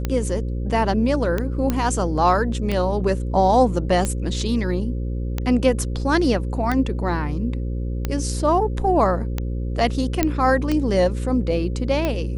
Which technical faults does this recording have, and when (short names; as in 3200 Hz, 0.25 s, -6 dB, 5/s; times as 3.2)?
buzz 60 Hz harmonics 9 -25 dBFS
tick 45 rpm -10 dBFS
1.7 pop -8 dBFS
10.23 pop -4 dBFS